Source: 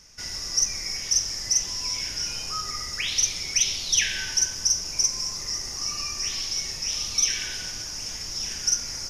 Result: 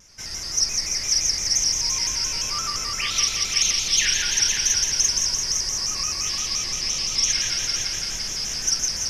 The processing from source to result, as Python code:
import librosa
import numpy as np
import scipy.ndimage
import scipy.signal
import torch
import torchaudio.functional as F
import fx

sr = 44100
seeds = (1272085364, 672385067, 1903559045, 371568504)

p1 = fx.reverse_delay(x, sr, ms=101, wet_db=-3.0)
p2 = fx.lowpass(p1, sr, hz=11000.0, slope=12, at=(6.42, 7.38))
p3 = p2 + fx.echo_heads(p2, sr, ms=170, heads='all three', feedback_pct=53, wet_db=-9.0, dry=0)
y = fx.vibrato_shape(p3, sr, shape='square', rate_hz=5.8, depth_cents=100.0)